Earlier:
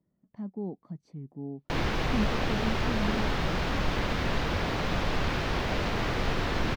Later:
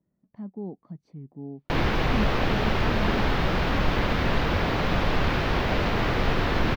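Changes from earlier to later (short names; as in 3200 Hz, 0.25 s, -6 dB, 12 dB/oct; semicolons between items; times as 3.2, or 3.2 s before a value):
background +5.0 dB; master: add bell 7800 Hz -8.5 dB 1.2 oct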